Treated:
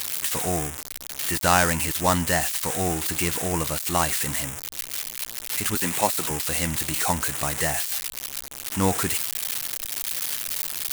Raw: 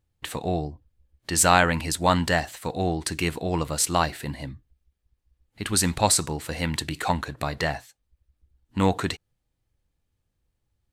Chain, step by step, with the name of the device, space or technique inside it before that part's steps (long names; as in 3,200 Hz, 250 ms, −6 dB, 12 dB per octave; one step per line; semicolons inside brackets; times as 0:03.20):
0:05.75–0:06.30: three-way crossover with the lows and the highs turned down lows −14 dB, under 180 Hz, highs −14 dB, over 4,800 Hz
budget class-D amplifier (gap after every zero crossing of 0.11 ms; spike at every zero crossing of −9 dBFS)
level −1 dB